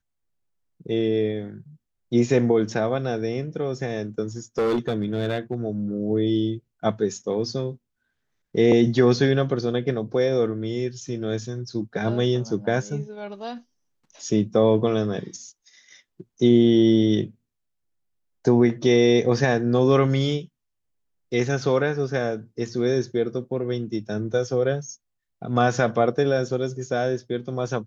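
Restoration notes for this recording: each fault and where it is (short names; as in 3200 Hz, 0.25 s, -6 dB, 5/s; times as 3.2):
4.58–5.54 clipped -18.5 dBFS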